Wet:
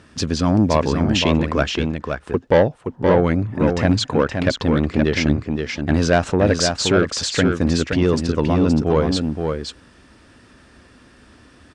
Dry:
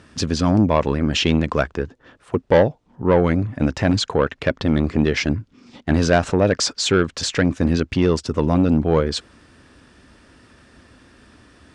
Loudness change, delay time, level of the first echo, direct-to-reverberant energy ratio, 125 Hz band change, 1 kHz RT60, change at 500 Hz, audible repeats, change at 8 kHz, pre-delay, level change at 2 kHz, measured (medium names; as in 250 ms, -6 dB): +0.5 dB, 522 ms, -5.5 dB, no reverb, +1.0 dB, no reverb, +1.0 dB, 1, +1.0 dB, no reverb, +1.0 dB